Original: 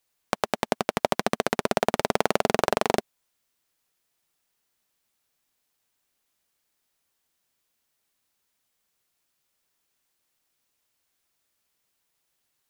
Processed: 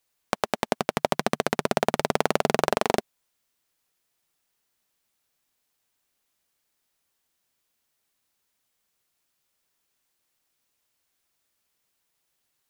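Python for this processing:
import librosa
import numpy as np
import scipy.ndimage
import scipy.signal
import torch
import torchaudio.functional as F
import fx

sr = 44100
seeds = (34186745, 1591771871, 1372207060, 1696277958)

y = fx.peak_eq(x, sr, hz=150.0, db=4.5, octaves=0.38, at=(0.76, 2.76))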